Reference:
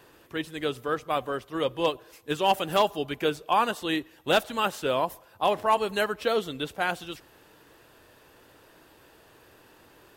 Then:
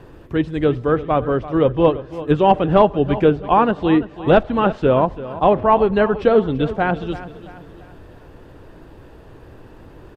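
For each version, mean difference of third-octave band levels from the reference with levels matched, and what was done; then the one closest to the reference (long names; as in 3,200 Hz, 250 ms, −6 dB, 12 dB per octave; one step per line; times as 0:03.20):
9.5 dB: treble cut that deepens with the level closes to 2,700 Hz, closed at −24 dBFS
spectral tilt −4 dB per octave
repeating echo 337 ms, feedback 43%, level −15 dB
level +7.5 dB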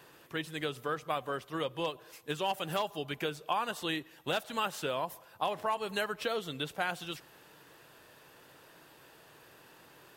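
4.5 dB: parametric band 150 Hz +11 dB 0.86 octaves
downward compressor 6 to 1, threshold −27 dBFS, peak gain reduction 10.5 dB
low-shelf EQ 310 Hz −12 dB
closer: second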